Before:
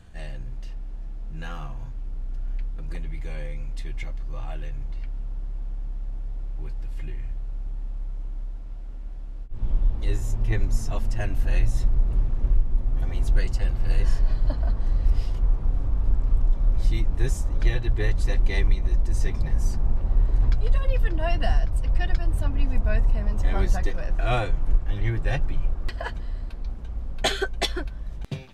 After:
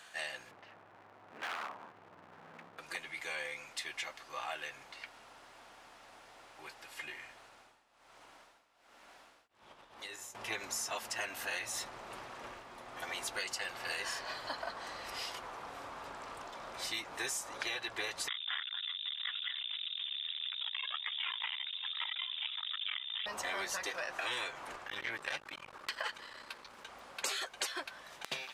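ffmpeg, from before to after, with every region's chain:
-filter_complex "[0:a]asettb=1/sr,asplit=3[a][b][c];[a]atrim=end=0.514[d];[b]atrim=start=0.51:end=2.78,asetpts=PTS-STARTPTS,afade=t=in:d=0.004:c=qsin,afade=t=out:st=2.266:d=0.004:c=qsin,lowpass=1.4k,aeval=exprs='0.0178*(abs(mod(val(0)/0.0178+3,4)-2)-1)':c=same[e];[c]atrim=start=2.776[f];[d][e]acrossfade=d=0.004:c1=hsin:c2=qsin[g];[g][f]acrossfade=d=0.004:c1=qsin:c2=hsin,asettb=1/sr,asplit=3[h][i][j];[h]atrim=end=7.454[k];[i]atrim=start=7.45:end=10.35,asetpts=PTS-STARTPTS,afade=t=in:d=0.004:c=qsin,afade=t=out:st=2.896:d=0.004:c=qsin,tremolo=f=1.2:d=0.84,acompressor=threshold=-28dB:ratio=8:attack=3.2:release=140:knee=1:detection=peak[l];[j]atrim=start=10.346[m];[k][l]acrossfade=d=0.004:c1=hsin:c2=qsin[n];[n][m]acrossfade=d=0.004:c1=qsin:c2=hsin,asettb=1/sr,asplit=3[o][p][q];[o]atrim=end=18.284[r];[p]atrim=start=18.28:end=23.26,asetpts=PTS-STARTPTS,afade=t=in:d=0.004:c=qsin,afade=t=out:st=4.976:d=0.004:c=qsin,aeval=exprs='(tanh(17.8*val(0)+0.35)-tanh(0.35))/17.8':c=same,aecho=1:1:989:0.0841,atrim=end_sample=219618,lowpass=f=3.2k:t=q:w=0.5098,lowpass=f=3.2k:t=q:w=0.6013,lowpass=f=3.2k:t=q:w=0.9,lowpass=f=3.2k:t=q:w=2.563,afreqshift=-3800[s];[q]atrim=start=23.256[t];[r][s]acrossfade=d=0.004:c1=hsin:c2=qsin[u];[u][t]acrossfade=d=0.004:c1=qsin:c2=hsin,asettb=1/sr,asplit=3[v][w][x];[v]atrim=end=24.874[y];[w]atrim=start=24.87:end=26.89,asetpts=PTS-STARTPTS,afade=t=in:d=0.004:c=qsin,afade=t=out:st=2.016:d=0.004:c=qsin,bandreject=f=710:w=5.2,aeval=exprs='(tanh(14.1*val(0)+0.25)-tanh(0.25))/14.1':c=same[z];[x]atrim=start=26.886[aa];[y][z]acrossfade=d=0.004:c1=hsin:c2=qsin[ab];[ab][aa]acrossfade=d=0.004:c1=qsin:c2=hsin,highpass=1k,afftfilt=real='re*lt(hypot(re,im),0.0631)':imag='im*lt(hypot(re,im),0.0631)':win_size=1024:overlap=0.75,acompressor=threshold=-43dB:ratio=6,volume=8.5dB"

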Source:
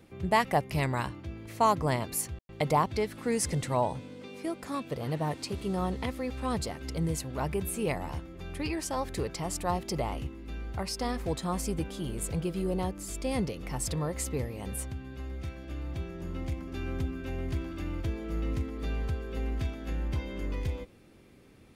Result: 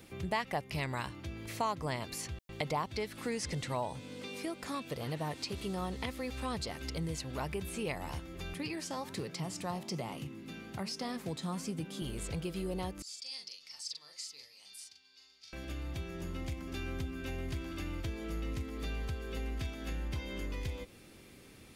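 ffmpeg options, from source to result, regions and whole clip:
-filter_complex "[0:a]asettb=1/sr,asplit=3[a][b][c];[a]atrim=end=8.544[d];[b]atrim=start=8.54:end=12.02,asetpts=PTS-STARTPTS,afade=t=in:d=0.004:c=qsin,afade=t=out:st=3.476:d=0.004:c=qsin,highpass=f=110:w=0.5412,highpass=f=110:w=1.3066,equalizer=f=170:w=0.98:g=7.5,flanger=delay=5.3:depth=9.7:regen=84:speed=1.2:shape=triangular[e];[c]atrim=start=12.016[f];[d][e]acrossfade=d=0.004:c1=hsin:c2=qsin[g];[g][f]acrossfade=d=0.004:c1=qsin:c2=hsin,asettb=1/sr,asplit=3[h][i][j];[h]atrim=end=13.024[k];[i]atrim=start=13.02:end=15.53,asetpts=PTS-STARTPTS,afade=t=in:d=0.004:c=qsin,afade=t=out:st=2.506:d=0.004:c=qsin,bandpass=f=4.8k:t=q:w=4.9,asplit=2[l][m];[m]adelay=41,volume=-4dB[n];[l][n]amix=inputs=2:normalize=0,atrim=end_sample=110691[o];[j]atrim=start=15.526[p];[k][o]acrossfade=d=0.004:c1=hsin:c2=qsin[q];[q][p]acrossfade=d=0.004:c1=qsin:c2=hsin,acrossover=split=5500[r][s];[s]acompressor=threshold=-56dB:ratio=4:attack=1:release=60[t];[r][t]amix=inputs=2:normalize=0,highshelf=f=2.1k:g=10,acompressor=threshold=-39dB:ratio=2"

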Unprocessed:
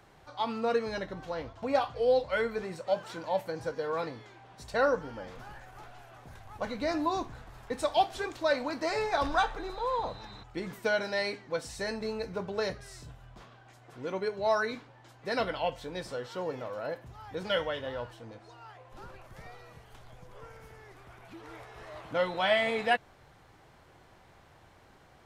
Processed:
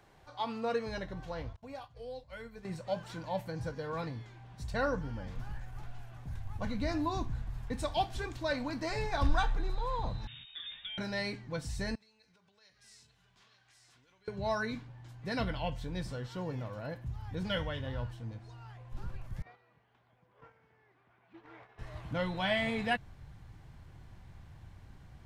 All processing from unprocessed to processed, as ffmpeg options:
-filter_complex "[0:a]asettb=1/sr,asplit=3[a][b][c];[a]atrim=end=1.564[d];[b]atrim=start=1.56:end=2.65,asetpts=PTS-STARTPTS,afade=t=in:d=0.004:c=qsin,afade=t=out:st=1.086:d=0.004:c=qsin,highshelf=f=7.8k:g=11,acompressor=threshold=-38dB:ratio=3:attack=3.2:release=140:knee=1:detection=peak,agate=range=-33dB:threshold=-36dB:ratio=3:release=100:detection=peak[e];[c]atrim=start=2.646[f];[d][e]acrossfade=d=0.004:c1=hsin:c2=qsin[g];[g][f]acrossfade=d=0.004:c1=qsin:c2=hsin,asettb=1/sr,asplit=3[h][i][j];[h]atrim=end=10.274[k];[i]atrim=start=10.27:end=10.98,asetpts=PTS-STARTPTS,afade=t=in:d=0.004:c=qsin,afade=t=out:st=0.706:d=0.004:c=qsin,asplit=2[l][m];[m]adelay=16,volume=-3.5dB[n];[l][n]amix=inputs=2:normalize=0,atrim=end_sample=31311,acompressor=threshold=-35dB:ratio=16:attack=3.2:release=140:knee=1:detection=peak,lowpass=f=3.2k:t=q:w=0.5098,lowpass=f=3.2k:t=q:w=0.6013,lowpass=f=3.2k:t=q:w=0.9,lowpass=f=3.2k:t=q:w=2.563,afreqshift=-3800[o];[j]atrim=start=10.976[p];[k][o]acrossfade=d=0.004:c1=hsin:c2=qsin[q];[q][p]acrossfade=d=0.004:c1=qsin:c2=hsin,asettb=1/sr,asplit=3[r][s][t];[r]atrim=end=11.954[u];[s]atrim=start=11.95:end=14.28,asetpts=PTS-STARTPTS,afade=t=in:d=0.004:c=qsin,afade=t=out:st=2.326:d=0.004:c=qsin,acompressor=threshold=-46dB:ratio=16:attack=3.2:release=140:knee=1:detection=peak,bandpass=f=4.7k:t=q:w=0.61,aecho=1:1:890:0.447,atrim=end_sample=102753[v];[t]atrim=start=14.276[w];[u][v]acrossfade=d=0.004:c1=hsin:c2=qsin[x];[x][w]acrossfade=d=0.004:c1=qsin:c2=hsin,asettb=1/sr,asplit=3[y][z][aa];[y]atrim=end=19.424[ab];[z]atrim=start=19.42:end=21.79,asetpts=PTS-STARTPTS,afade=t=in:d=0.004:c=qsin,afade=t=out:st=2.366:d=0.004:c=qsin,highpass=330,lowpass=2.7k,agate=range=-9dB:threshold=-51dB:ratio=16:release=100:detection=peak[ac];[aa]atrim=start=21.786[ad];[ab][ac]acrossfade=d=0.004:c1=hsin:c2=qsin[ae];[ae][ad]acrossfade=d=0.004:c1=qsin:c2=hsin,bandreject=f=1.3k:w=16,asubboost=boost=7:cutoff=170,volume=-3.5dB"

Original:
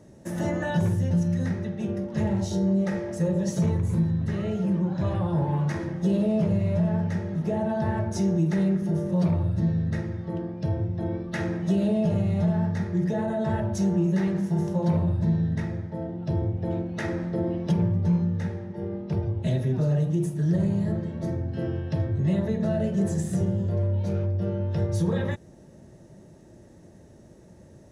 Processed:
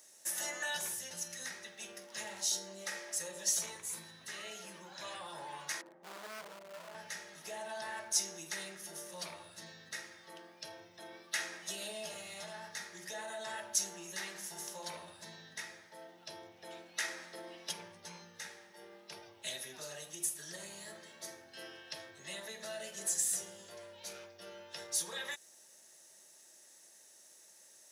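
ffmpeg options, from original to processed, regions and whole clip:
-filter_complex "[0:a]asettb=1/sr,asplit=3[a][b][c];[a]atrim=end=5.814[d];[b]atrim=start=5.81:end=6.95,asetpts=PTS-STARTPTS,afade=t=in:d=0.004:c=qsin,afade=t=out:st=1.136:d=0.004:c=qsin,asuperpass=centerf=390:order=4:qfactor=0.67,volume=27dB,asoftclip=hard,volume=-27dB[e];[c]atrim=start=6.946[f];[d][e]acrossfade=d=0.004:c1=hsin:c2=qsin[g];[g][f]acrossfade=d=0.004:c1=qsin:c2=hsin,highpass=f=900:p=1,aderivative,volume=10.5dB"

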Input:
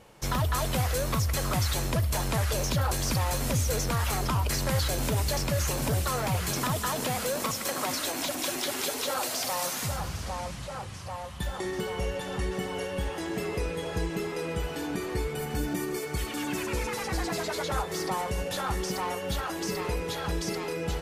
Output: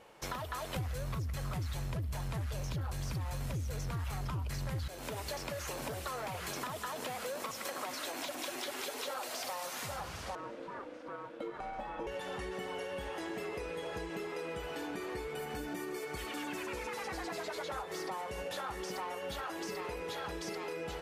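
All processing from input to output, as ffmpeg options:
-filter_complex "[0:a]asettb=1/sr,asplit=3[a][b][c];[a]atrim=end=0.764[d];[b]atrim=start=0.76:end=4.88,asetpts=PTS-STARTPTS,afade=t=in:d=0.004:c=qsin,afade=t=out:st=4.116:d=0.004:c=qsin,lowshelf=f=200:t=q:w=1.5:g=14,acontrast=45[e];[c]atrim=start=4.876[f];[d][e]acrossfade=d=0.004:c1=hsin:c2=qsin[g];[g][f]acrossfade=d=0.004:c1=qsin:c2=hsin,asettb=1/sr,asplit=3[h][i][j];[h]atrim=end=10.354[k];[i]atrim=start=10.35:end=12.07,asetpts=PTS-STARTPTS,afade=t=in:d=0.004:c=qsin,afade=t=out:st=1.716:d=0.004:c=qsin,lowpass=f=1.3k:p=1,aeval=exprs='val(0)*sin(2*PI*400*n/s)':c=same[l];[j]atrim=start=12.066[m];[k][l]acrossfade=d=0.004:c1=hsin:c2=qsin[n];[n][m]acrossfade=d=0.004:c1=qsin:c2=hsin,bass=f=250:g=-11,treble=f=4k:g=-6,acompressor=threshold=-35dB:ratio=6,volume=-1.5dB"

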